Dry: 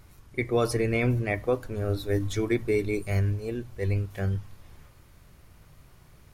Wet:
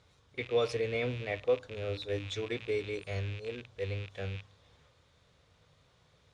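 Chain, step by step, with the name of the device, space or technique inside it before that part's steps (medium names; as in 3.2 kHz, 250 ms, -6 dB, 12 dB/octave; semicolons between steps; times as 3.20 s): car door speaker with a rattle (rattle on loud lows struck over -38 dBFS, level -28 dBFS; cabinet simulation 90–7500 Hz, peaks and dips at 130 Hz -4 dB, 210 Hz -7 dB, 340 Hz -8 dB, 490 Hz +8 dB, 3.6 kHz +10 dB); trim -8 dB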